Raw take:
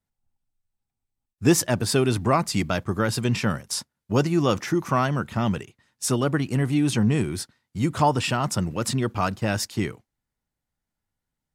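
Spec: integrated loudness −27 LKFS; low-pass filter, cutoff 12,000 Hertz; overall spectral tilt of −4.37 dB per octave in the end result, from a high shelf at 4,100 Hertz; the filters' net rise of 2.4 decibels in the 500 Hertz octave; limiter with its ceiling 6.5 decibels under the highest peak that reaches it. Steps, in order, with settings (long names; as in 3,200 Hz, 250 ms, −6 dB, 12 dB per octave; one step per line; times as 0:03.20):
low-pass filter 12,000 Hz
parametric band 500 Hz +3 dB
high-shelf EQ 4,100 Hz +8.5 dB
level −3.5 dB
brickwall limiter −14.5 dBFS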